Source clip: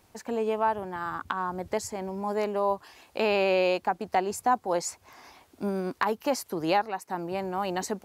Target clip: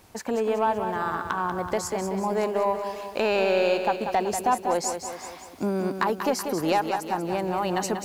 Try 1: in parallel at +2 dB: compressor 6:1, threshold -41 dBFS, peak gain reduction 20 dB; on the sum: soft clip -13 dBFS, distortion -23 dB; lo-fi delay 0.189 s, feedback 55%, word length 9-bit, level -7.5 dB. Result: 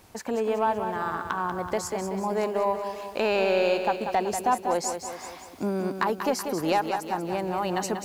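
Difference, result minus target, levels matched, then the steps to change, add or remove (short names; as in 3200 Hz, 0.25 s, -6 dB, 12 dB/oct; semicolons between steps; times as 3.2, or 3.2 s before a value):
compressor: peak gain reduction +6 dB
change: compressor 6:1, threshold -34 dBFS, peak gain reduction 14 dB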